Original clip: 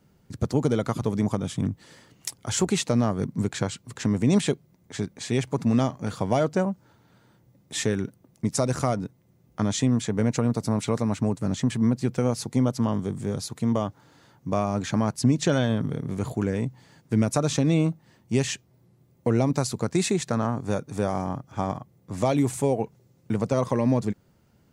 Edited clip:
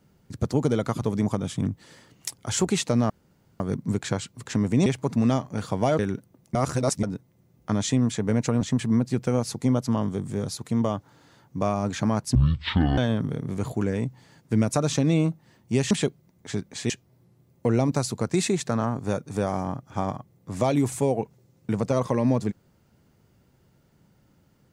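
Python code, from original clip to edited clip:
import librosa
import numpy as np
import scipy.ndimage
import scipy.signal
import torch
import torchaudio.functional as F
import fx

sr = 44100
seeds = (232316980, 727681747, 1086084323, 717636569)

y = fx.edit(x, sr, fx.insert_room_tone(at_s=3.1, length_s=0.5),
    fx.move(start_s=4.36, length_s=0.99, to_s=18.51),
    fx.cut(start_s=6.48, length_s=1.41),
    fx.reverse_span(start_s=8.45, length_s=0.48),
    fx.cut(start_s=10.51, length_s=1.01),
    fx.speed_span(start_s=15.26, length_s=0.32, speed=0.51), tone=tone)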